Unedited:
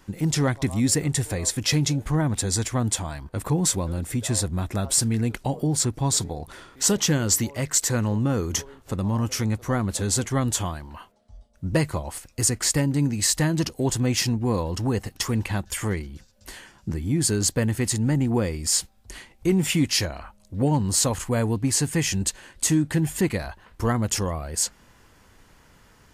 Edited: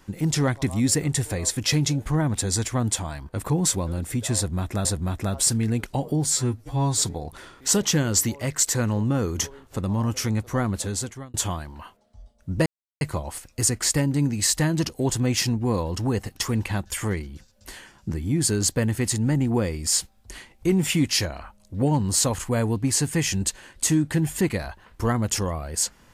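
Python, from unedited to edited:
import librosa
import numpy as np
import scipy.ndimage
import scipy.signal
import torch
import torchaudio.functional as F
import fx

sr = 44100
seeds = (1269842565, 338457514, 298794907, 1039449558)

y = fx.edit(x, sr, fx.repeat(start_s=4.36, length_s=0.49, count=2),
    fx.stretch_span(start_s=5.77, length_s=0.36, factor=2.0),
    fx.fade_out_span(start_s=9.86, length_s=0.63),
    fx.insert_silence(at_s=11.81, length_s=0.35), tone=tone)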